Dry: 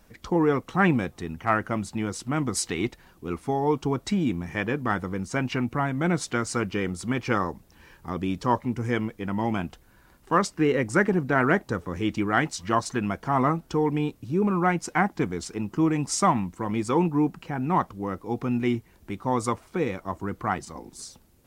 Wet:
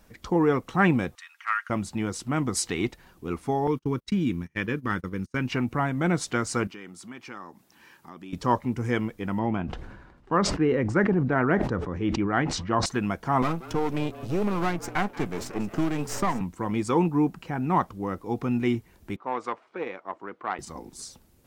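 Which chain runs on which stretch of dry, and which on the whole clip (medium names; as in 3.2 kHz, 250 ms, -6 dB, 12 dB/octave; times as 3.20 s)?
1.15–1.70 s: steep high-pass 1.2 kHz + treble shelf 9.7 kHz -10.5 dB + comb 4.3 ms, depth 34%
3.67–5.48 s: gate -33 dBFS, range -33 dB + peaking EQ 710 Hz -14 dB 0.68 oct + band-stop 7.6 kHz, Q 8.9
6.67–8.33 s: high-pass 230 Hz + peaking EQ 490 Hz -7.5 dB 0.61 oct + compression 2:1, threshold -47 dBFS
9.39–12.86 s: tape spacing loss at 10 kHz 25 dB + decay stretcher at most 49 dB/s
13.42–16.41 s: partial rectifier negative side -12 dB + frequency-shifting echo 180 ms, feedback 56%, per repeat +120 Hz, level -19 dB + three bands compressed up and down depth 70%
19.16–20.59 s: valve stage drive 18 dB, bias 0.6 + band-pass 410–2900 Hz + tape noise reduction on one side only decoder only
whole clip: none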